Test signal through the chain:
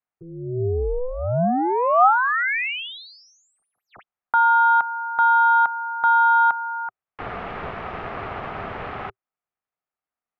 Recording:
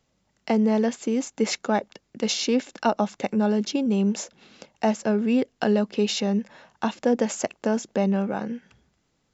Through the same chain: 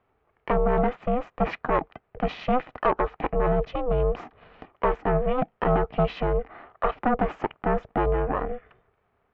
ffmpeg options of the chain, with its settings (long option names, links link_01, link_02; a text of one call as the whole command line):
ffmpeg -i in.wav -af "aeval=exprs='0.398*(cos(1*acos(clip(val(0)/0.398,-1,1)))-cos(1*PI/2))+0.141*(cos(5*acos(clip(val(0)/0.398,-1,1)))-cos(5*PI/2))+0.00282*(cos(8*acos(clip(val(0)/0.398,-1,1)))-cos(8*PI/2))':channel_layout=same,highpass=frequency=140:width=0.5412,highpass=frequency=140:width=1.3066,equalizer=frequency=140:width_type=q:width=4:gain=3,equalizer=frequency=290:width_type=q:width=4:gain=-8,equalizer=frequency=430:width_type=q:width=4:gain=4,equalizer=frequency=1000:width_type=q:width=4:gain=10,lowpass=frequency=2300:width=0.5412,lowpass=frequency=2300:width=1.3066,aeval=exprs='val(0)*sin(2*PI*250*n/s)':channel_layout=same,volume=-4dB" out.wav